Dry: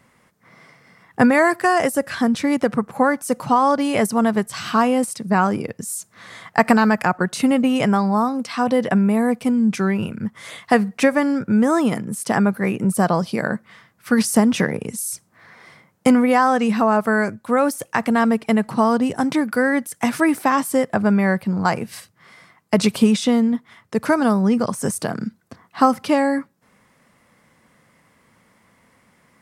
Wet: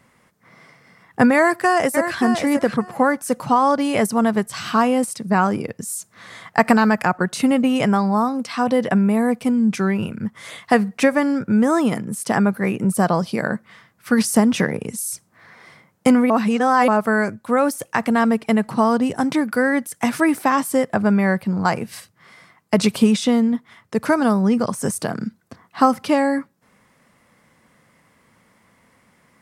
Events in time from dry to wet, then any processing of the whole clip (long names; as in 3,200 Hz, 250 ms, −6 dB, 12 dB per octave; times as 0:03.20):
0:01.36–0:02.18: delay throw 580 ms, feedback 15%, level −7.5 dB
0:16.30–0:16.88: reverse